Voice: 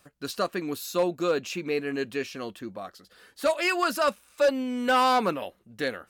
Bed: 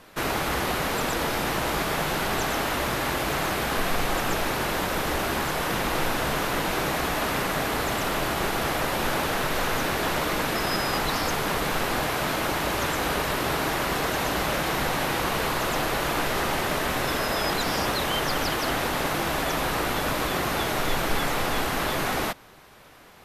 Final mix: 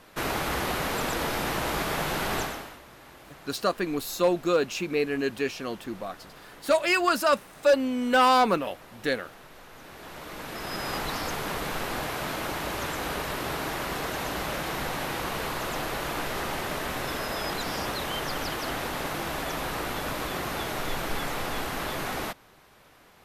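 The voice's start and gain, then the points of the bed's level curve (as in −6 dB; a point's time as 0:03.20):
3.25 s, +2.0 dB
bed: 0:02.40 −2.5 dB
0:02.82 −23 dB
0:09.69 −23 dB
0:10.90 −5.5 dB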